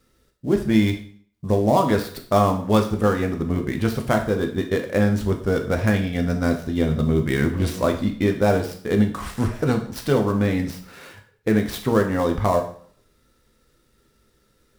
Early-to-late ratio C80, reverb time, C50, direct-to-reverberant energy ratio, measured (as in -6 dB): 13.5 dB, 0.55 s, 9.5 dB, 3.5 dB